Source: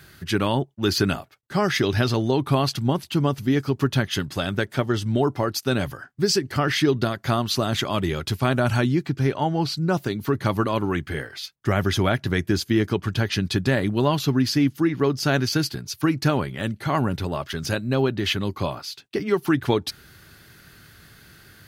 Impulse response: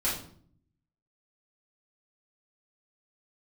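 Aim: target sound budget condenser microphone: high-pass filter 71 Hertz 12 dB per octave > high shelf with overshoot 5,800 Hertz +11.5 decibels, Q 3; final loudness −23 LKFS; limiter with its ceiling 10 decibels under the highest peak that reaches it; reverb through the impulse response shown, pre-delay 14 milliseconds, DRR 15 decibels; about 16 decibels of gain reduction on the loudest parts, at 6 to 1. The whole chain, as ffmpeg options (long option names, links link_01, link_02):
-filter_complex "[0:a]acompressor=threshold=-34dB:ratio=6,alimiter=level_in=7.5dB:limit=-24dB:level=0:latency=1,volume=-7.5dB,asplit=2[link_01][link_02];[1:a]atrim=start_sample=2205,adelay=14[link_03];[link_02][link_03]afir=irnorm=-1:irlink=0,volume=-23.5dB[link_04];[link_01][link_04]amix=inputs=2:normalize=0,highpass=71,highshelf=frequency=5800:width_type=q:width=3:gain=11.5,volume=16.5dB"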